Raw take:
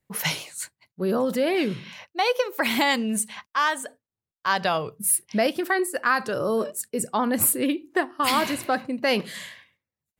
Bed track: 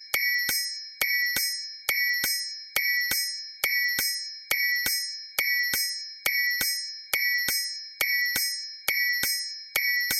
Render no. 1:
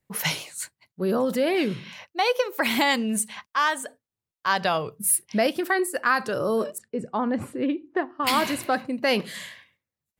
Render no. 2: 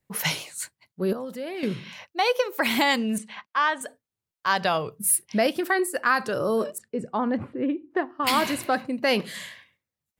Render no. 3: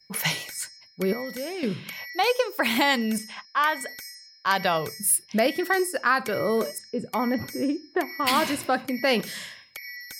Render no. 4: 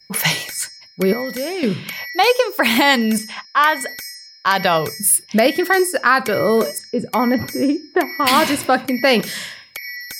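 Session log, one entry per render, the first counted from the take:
6.78–8.27 tape spacing loss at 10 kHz 30 dB
1.13–1.63 gain -10.5 dB; 3.18–3.81 BPF 160–3500 Hz; 7.37–7.91 air absorption 380 m
add bed track -14 dB
gain +8.5 dB; limiter -3 dBFS, peak gain reduction 3 dB

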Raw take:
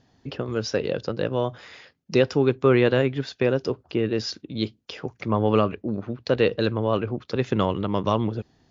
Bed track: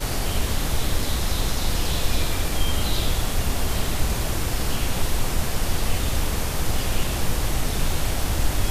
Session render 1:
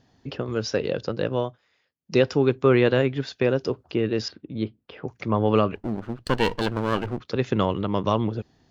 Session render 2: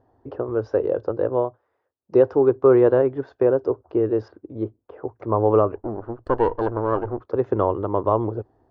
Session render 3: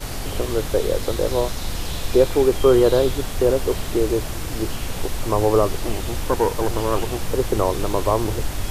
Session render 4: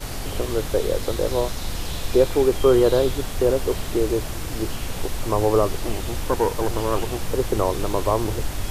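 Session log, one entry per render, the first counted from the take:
1.39–2.17 dip -22.5 dB, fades 0.18 s; 4.28–5.08 air absorption 450 m; 5.75–7.2 minimum comb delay 0.65 ms
EQ curve 110 Hz 0 dB, 170 Hz -14 dB, 350 Hz +5 dB, 1000 Hz +4 dB, 1600 Hz -6 dB, 2300 Hz -19 dB, 3800 Hz -24 dB, 8200 Hz -28 dB
add bed track -3.5 dB
gain -1.5 dB

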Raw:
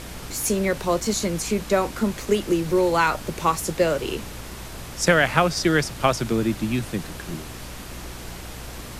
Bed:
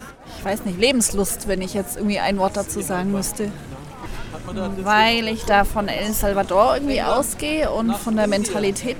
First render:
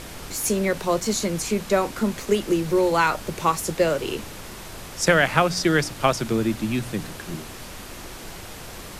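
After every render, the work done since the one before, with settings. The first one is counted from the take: de-hum 60 Hz, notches 5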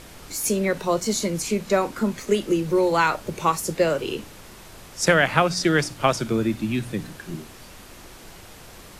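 noise print and reduce 6 dB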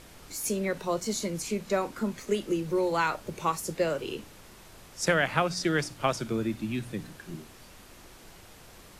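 gain -7 dB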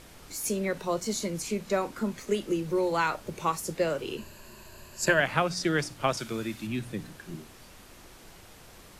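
4.17–5.2 ripple EQ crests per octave 1.4, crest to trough 12 dB; 6.17–6.67 tilt shelf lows -5 dB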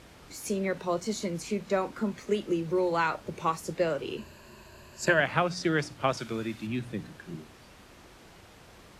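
HPF 42 Hz; high shelf 7300 Hz -12 dB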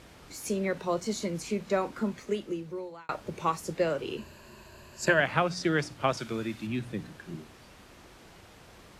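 2.05–3.09 fade out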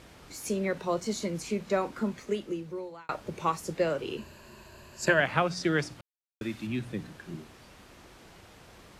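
6.01–6.41 mute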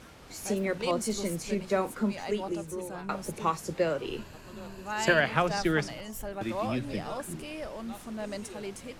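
add bed -18 dB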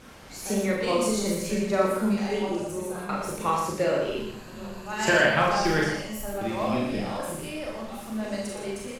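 on a send: echo 0.118 s -6.5 dB; on the sum: Schroeder reverb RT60 0.46 s, combs from 29 ms, DRR -1.5 dB

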